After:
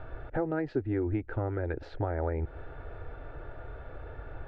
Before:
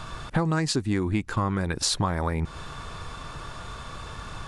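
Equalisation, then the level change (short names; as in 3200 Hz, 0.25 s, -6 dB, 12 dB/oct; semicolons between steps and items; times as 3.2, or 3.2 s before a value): ladder low-pass 1600 Hz, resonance 35%; fixed phaser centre 450 Hz, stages 4; +7.0 dB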